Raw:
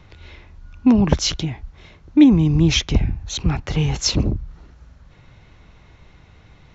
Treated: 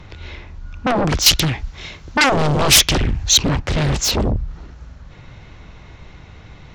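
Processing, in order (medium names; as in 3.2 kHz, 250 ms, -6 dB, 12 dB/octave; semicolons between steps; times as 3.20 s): sine folder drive 16 dB, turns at -1.5 dBFS; 1.26–3.49 s: treble shelf 2.1 kHz +11.5 dB; loudspeaker Doppler distortion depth 0.64 ms; trim -12 dB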